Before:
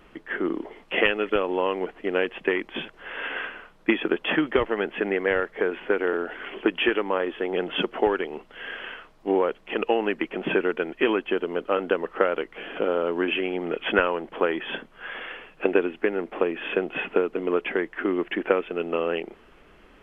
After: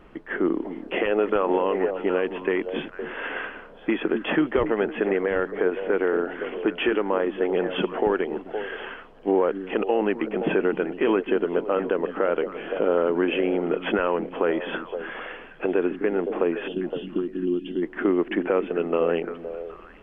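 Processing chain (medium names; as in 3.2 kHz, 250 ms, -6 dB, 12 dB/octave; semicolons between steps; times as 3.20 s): 1.06–1.61 s: peaking EQ 470 Hz -> 1.8 kHz +9 dB 2 oct; 16.68–17.83 s: time-frequency box 370–2700 Hz -24 dB; repeats whose band climbs or falls 257 ms, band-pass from 210 Hz, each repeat 1.4 oct, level -7 dB; peak limiter -14.5 dBFS, peak gain reduction 9.5 dB; treble shelf 2.1 kHz -11.5 dB; trim +4 dB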